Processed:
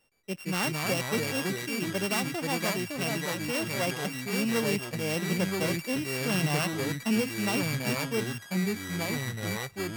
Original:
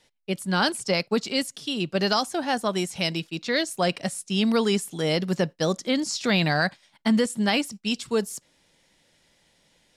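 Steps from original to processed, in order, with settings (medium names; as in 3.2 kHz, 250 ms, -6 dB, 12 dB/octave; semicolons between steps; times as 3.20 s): sorted samples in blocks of 16 samples; ever faster or slower copies 117 ms, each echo -3 st, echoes 3; trim -7 dB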